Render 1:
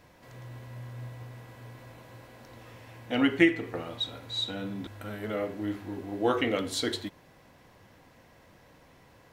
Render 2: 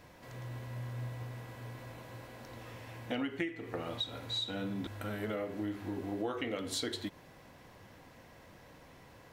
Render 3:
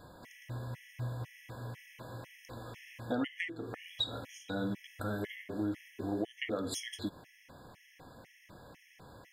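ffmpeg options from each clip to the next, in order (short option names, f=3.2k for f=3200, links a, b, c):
-af "acompressor=threshold=-34dB:ratio=8,volume=1dB"
-af "afftfilt=real='re*gt(sin(2*PI*2*pts/sr)*(1-2*mod(floor(b*sr/1024/1700),2)),0)':imag='im*gt(sin(2*PI*2*pts/sr)*(1-2*mod(floor(b*sr/1024/1700),2)),0)':win_size=1024:overlap=0.75,volume=3dB"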